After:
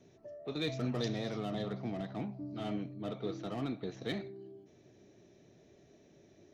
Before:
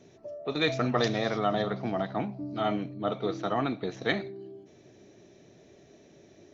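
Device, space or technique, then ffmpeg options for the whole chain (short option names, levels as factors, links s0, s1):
one-band saturation: -filter_complex "[0:a]lowshelf=f=240:g=4,acrossover=split=510|2600[s0][s1][s2];[s1]asoftclip=type=tanh:threshold=0.0119[s3];[s0][s3][s2]amix=inputs=3:normalize=0,volume=0.422"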